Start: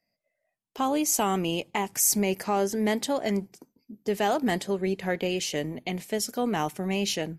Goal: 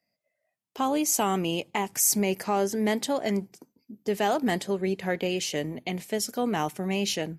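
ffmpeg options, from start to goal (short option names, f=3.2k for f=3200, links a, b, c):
-af "highpass=67"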